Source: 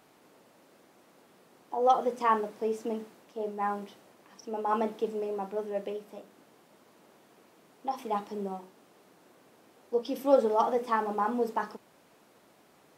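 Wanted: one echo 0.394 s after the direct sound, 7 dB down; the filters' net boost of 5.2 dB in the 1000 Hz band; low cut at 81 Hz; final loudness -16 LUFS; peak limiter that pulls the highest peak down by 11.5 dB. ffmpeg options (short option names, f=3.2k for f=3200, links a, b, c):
-af "highpass=81,equalizer=f=1k:t=o:g=6.5,alimiter=limit=-18.5dB:level=0:latency=1,aecho=1:1:394:0.447,volume=14.5dB"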